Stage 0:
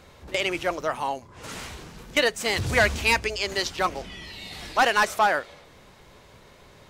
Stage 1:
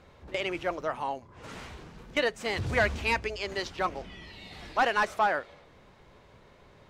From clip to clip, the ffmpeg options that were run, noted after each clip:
-af "lowpass=f=2.4k:p=1,volume=-4dB"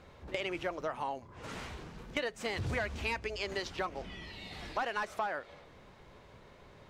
-af "acompressor=threshold=-32dB:ratio=6"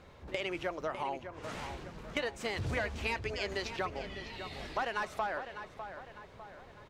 -filter_complex "[0:a]asplit=2[a][b];[b]adelay=602,lowpass=f=3.7k:p=1,volume=-9.5dB,asplit=2[c][d];[d]adelay=602,lowpass=f=3.7k:p=1,volume=0.47,asplit=2[e][f];[f]adelay=602,lowpass=f=3.7k:p=1,volume=0.47,asplit=2[g][h];[h]adelay=602,lowpass=f=3.7k:p=1,volume=0.47,asplit=2[i][j];[j]adelay=602,lowpass=f=3.7k:p=1,volume=0.47[k];[a][c][e][g][i][k]amix=inputs=6:normalize=0"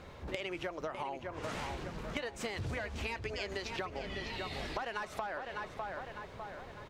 -af "acompressor=threshold=-40dB:ratio=10,volume=5dB"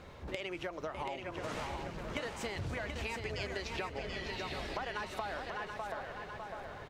-af "aecho=1:1:731|1462|2193:0.501|0.13|0.0339,volume=-1dB"

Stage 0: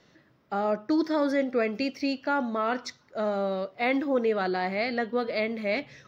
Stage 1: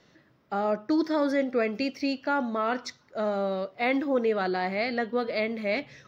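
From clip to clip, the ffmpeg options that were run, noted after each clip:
-af anull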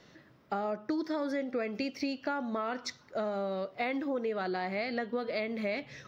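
-af "acompressor=threshold=-33dB:ratio=6,volume=2.5dB"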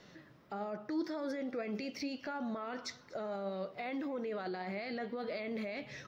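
-af "alimiter=level_in=7.5dB:limit=-24dB:level=0:latency=1:release=13,volume=-7.5dB,flanger=delay=4.6:depth=2.5:regen=79:speed=1.7:shape=triangular,aecho=1:1:242:0.075,volume=4.5dB"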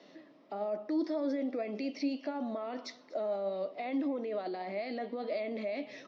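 -af "highpass=f=220:w=0.5412,highpass=f=220:w=1.3066,equalizer=f=280:t=q:w=4:g=8,equalizer=f=630:t=q:w=4:g=8,equalizer=f=1.5k:t=q:w=4:g=-9,lowpass=f=5.6k:w=0.5412,lowpass=f=5.6k:w=1.3066"

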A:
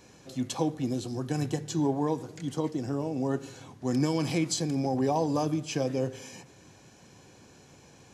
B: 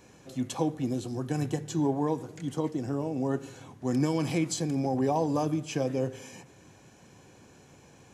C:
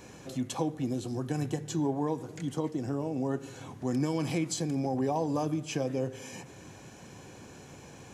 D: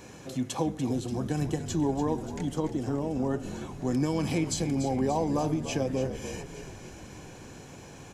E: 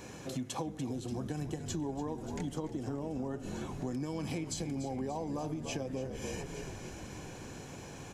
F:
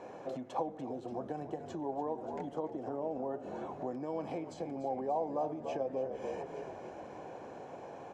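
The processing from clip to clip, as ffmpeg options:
-af "equalizer=f=4.7k:t=o:w=0.88:g=-5"
-af "acompressor=threshold=-48dB:ratio=1.5,volume=6dB"
-filter_complex "[0:a]asplit=8[a][b][c][d][e][f][g][h];[b]adelay=290,afreqshift=-51,volume=-11dB[i];[c]adelay=580,afreqshift=-102,volume=-15.2dB[j];[d]adelay=870,afreqshift=-153,volume=-19.3dB[k];[e]adelay=1160,afreqshift=-204,volume=-23.5dB[l];[f]adelay=1450,afreqshift=-255,volume=-27.6dB[m];[g]adelay=1740,afreqshift=-306,volume=-31.8dB[n];[h]adelay=2030,afreqshift=-357,volume=-35.9dB[o];[a][i][j][k][l][m][n][o]amix=inputs=8:normalize=0,volume=2dB"
-af "acompressor=threshold=-34dB:ratio=6"
-af "bandpass=f=660:t=q:w=2:csg=0,volume=8dB"

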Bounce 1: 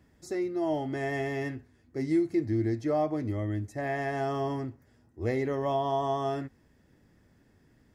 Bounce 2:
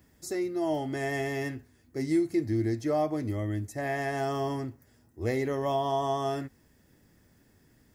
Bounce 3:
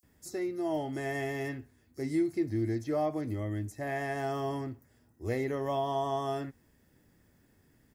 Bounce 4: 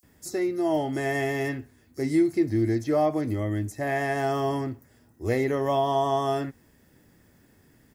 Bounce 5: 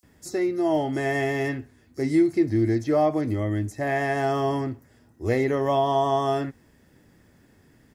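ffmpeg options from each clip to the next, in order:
-af "aemphasis=mode=production:type=50kf"
-filter_complex "[0:a]acrossover=split=5400[a][b];[a]adelay=30[c];[c][b]amix=inputs=2:normalize=0,volume=-3dB"
-af "lowshelf=f=74:g=-5,volume=7.5dB"
-af "highshelf=f=11k:g=-11.5,volume=2dB"

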